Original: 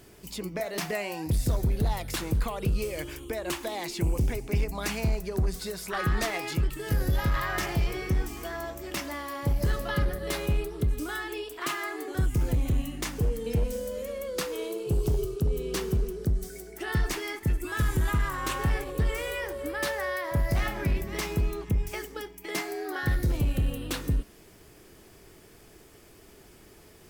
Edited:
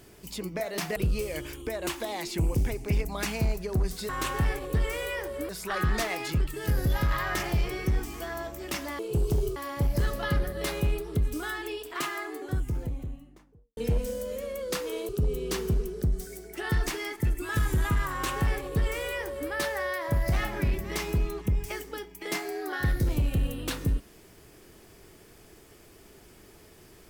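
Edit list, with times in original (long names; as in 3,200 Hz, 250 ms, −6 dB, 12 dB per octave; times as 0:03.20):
0:00.96–0:02.59: remove
0:11.54–0:13.43: fade out and dull
0:14.75–0:15.32: move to 0:09.22
0:18.34–0:19.74: duplicate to 0:05.72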